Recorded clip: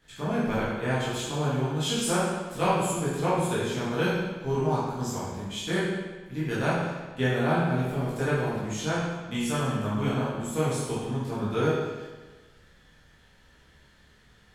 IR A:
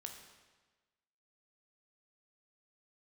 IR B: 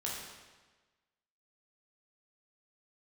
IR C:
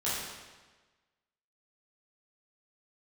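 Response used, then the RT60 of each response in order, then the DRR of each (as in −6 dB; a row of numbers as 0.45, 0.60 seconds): C; 1.3, 1.3, 1.3 seconds; 3.5, −4.5, −10.0 decibels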